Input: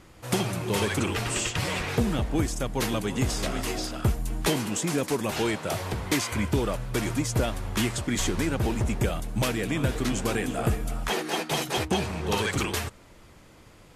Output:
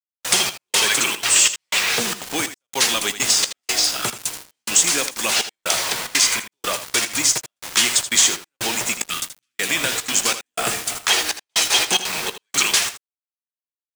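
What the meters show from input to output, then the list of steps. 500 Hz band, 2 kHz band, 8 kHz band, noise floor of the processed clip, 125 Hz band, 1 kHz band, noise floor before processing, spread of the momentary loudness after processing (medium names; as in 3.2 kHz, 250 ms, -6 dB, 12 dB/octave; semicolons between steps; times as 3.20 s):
-2.0 dB, +10.0 dB, +16.5 dB, under -85 dBFS, -14.0 dB, +4.5 dB, -52 dBFS, 9 LU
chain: high-pass 110 Hz 24 dB/octave; time-frequency box 9.10–9.60 s, 350–1100 Hz -27 dB; frequency weighting ITU-R 468; in parallel at 0 dB: compression, threshold -30 dBFS, peak gain reduction 14 dB; on the sum: bit crusher 5-bit; trance gate "xx.xxx...xxx" 183 bpm -60 dB; on a send: early reflections 17 ms -15.5 dB, 80 ms -12 dB; on the sum: trim +3 dB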